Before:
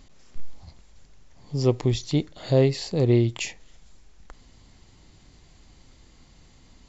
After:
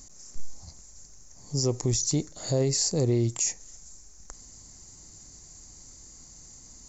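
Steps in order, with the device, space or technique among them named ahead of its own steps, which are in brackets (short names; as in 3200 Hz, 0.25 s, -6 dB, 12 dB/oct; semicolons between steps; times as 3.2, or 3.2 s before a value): over-bright horn tweeter (resonant high shelf 4600 Hz +12.5 dB, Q 3; limiter -15 dBFS, peak gain reduction 10.5 dB); gain -1.5 dB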